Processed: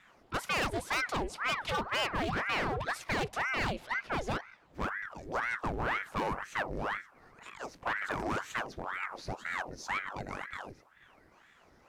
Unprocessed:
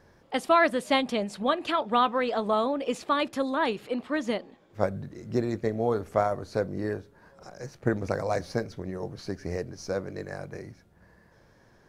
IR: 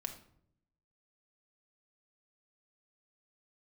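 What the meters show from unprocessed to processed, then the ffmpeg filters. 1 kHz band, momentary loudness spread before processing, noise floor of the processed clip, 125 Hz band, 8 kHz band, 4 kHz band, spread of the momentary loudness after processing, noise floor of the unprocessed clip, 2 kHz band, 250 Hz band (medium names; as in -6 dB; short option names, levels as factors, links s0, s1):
-6.0 dB, 14 LU, -63 dBFS, -6.0 dB, 0.0 dB, -3.0 dB, 9 LU, -60 dBFS, +1.5 dB, -10.5 dB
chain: -af "asoftclip=type=hard:threshold=0.0501,aeval=exprs='val(0)*sin(2*PI*1000*n/s+1000*0.85/2*sin(2*PI*2*n/s))':c=same"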